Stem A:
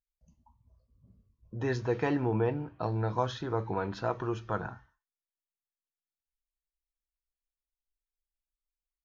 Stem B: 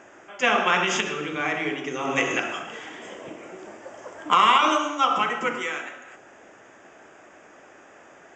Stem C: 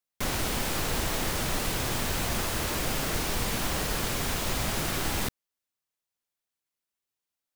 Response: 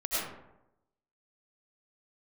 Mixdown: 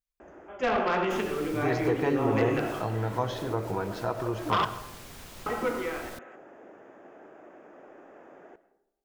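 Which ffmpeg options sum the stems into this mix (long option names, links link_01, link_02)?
-filter_complex "[0:a]volume=-0.5dB,asplit=3[link_01][link_02][link_03];[link_02]volume=-17dB[link_04];[1:a]bandpass=frequency=370:width_type=q:width=0.72:csg=0,aeval=exprs='0.266*sin(PI/2*2.51*val(0)/0.266)':channel_layout=same,adelay=200,volume=-10dB,asplit=3[link_05][link_06][link_07];[link_05]atrim=end=4.65,asetpts=PTS-STARTPTS,afade=type=out:start_time=4.646:duration=0.004:curve=hsin[link_08];[link_06]atrim=start=4.65:end=5.46,asetpts=PTS-STARTPTS,volume=0[link_09];[link_07]atrim=start=5.46,asetpts=PTS-STARTPTS,afade=type=in:duration=0.004:curve=hsin[link_10];[link_08][link_09][link_10]concat=n=3:v=0:a=1,asplit=2[link_11][link_12];[link_12]volume=-21dB[link_13];[2:a]adelay=900,volume=-16dB[link_14];[link_03]apad=whole_len=372704[link_15];[link_14][link_15]sidechaincompress=threshold=-36dB:ratio=8:attack=25:release=178[link_16];[3:a]atrim=start_sample=2205[link_17];[link_04][link_13]amix=inputs=2:normalize=0[link_18];[link_18][link_17]afir=irnorm=-1:irlink=0[link_19];[link_01][link_11][link_16][link_19]amix=inputs=4:normalize=0"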